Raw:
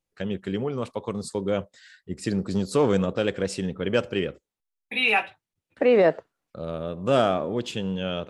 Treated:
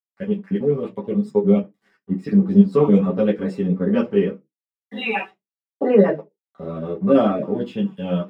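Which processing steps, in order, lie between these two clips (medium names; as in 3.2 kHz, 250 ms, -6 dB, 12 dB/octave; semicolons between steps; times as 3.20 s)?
random holes in the spectrogram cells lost 20%; treble shelf 9.1 kHz -11 dB; crossover distortion -50.5 dBFS; reverberation RT60 0.15 s, pre-delay 3 ms, DRR -2.5 dB; three-phase chorus; trim -9 dB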